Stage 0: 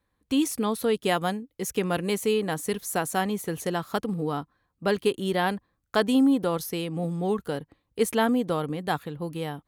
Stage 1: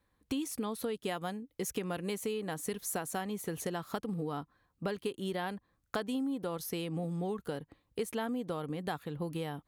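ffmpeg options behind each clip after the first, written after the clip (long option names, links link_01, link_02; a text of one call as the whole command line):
ffmpeg -i in.wav -af "acompressor=threshold=-33dB:ratio=6" out.wav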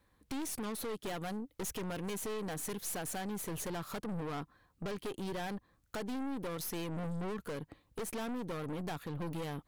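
ffmpeg -i in.wav -af "aeval=exprs='(tanh(141*val(0)+0.5)-tanh(0.5))/141':channel_layout=same,volume=6.5dB" out.wav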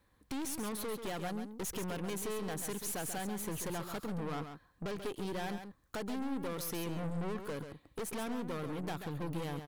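ffmpeg -i in.wav -af "aecho=1:1:136:0.376" out.wav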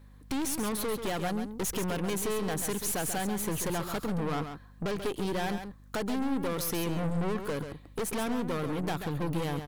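ffmpeg -i in.wav -af "aeval=exprs='val(0)+0.00112*(sin(2*PI*50*n/s)+sin(2*PI*2*50*n/s)/2+sin(2*PI*3*50*n/s)/3+sin(2*PI*4*50*n/s)/4+sin(2*PI*5*50*n/s)/5)':channel_layout=same,volume=7dB" out.wav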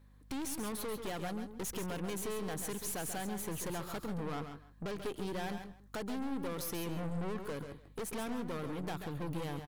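ffmpeg -i in.wav -filter_complex "[0:a]asplit=2[link_01][link_02];[link_02]adelay=157.4,volume=-15dB,highshelf=frequency=4000:gain=-3.54[link_03];[link_01][link_03]amix=inputs=2:normalize=0,volume=-7.5dB" out.wav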